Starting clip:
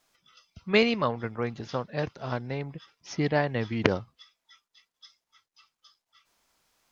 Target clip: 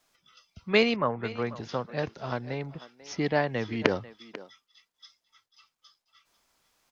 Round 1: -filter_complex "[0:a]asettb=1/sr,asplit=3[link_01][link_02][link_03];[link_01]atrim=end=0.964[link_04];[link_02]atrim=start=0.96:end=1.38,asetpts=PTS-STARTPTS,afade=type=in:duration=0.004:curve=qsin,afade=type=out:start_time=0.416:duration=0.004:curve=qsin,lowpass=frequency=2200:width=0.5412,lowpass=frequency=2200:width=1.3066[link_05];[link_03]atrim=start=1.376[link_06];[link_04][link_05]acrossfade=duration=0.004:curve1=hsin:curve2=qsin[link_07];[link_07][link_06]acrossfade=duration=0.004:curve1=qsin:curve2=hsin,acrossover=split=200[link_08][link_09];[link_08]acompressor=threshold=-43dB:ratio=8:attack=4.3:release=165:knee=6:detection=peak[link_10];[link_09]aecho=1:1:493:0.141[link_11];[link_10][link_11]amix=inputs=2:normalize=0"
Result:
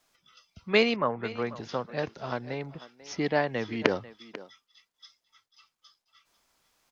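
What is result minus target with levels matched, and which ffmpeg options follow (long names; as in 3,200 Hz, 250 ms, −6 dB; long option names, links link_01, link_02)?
downward compressor: peak gain reduction +6 dB
-filter_complex "[0:a]asettb=1/sr,asplit=3[link_01][link_02][link_03];[link_01]atrim=end=0.964[link_04];[link_02]atrim=start=0.96:end=1.38,asetpts=PTS-STARTPTS,afade=type=in:duration=0.004:curve=qsin,afade=type=out:start_time=0.416:duration=0.004:curve=qsin,lowpass=frequency=2200:width=0.5412,lowpass=frequency=2200:width=1.3066[link_05];[link_03]atrim=start=1.376[link_06];[link_04][link_05]acrossfade=duration=0.004:curve1=hsin:curve2=qsin[link_07];[link_07][link_06]acrossfade=duration=0.004:curve1=qsin:curve2=hsin,acrossover=split=200[link_08][link_09];[link_08]acompressor=threshold=-36dB:ratio=8:attack=4.3:release=165:knee=6:detection=peak[link_10];[link_09]aecho=1:1:493:0.141[link_11];[link_10][link_11]amix=inputs=2:normalize=0"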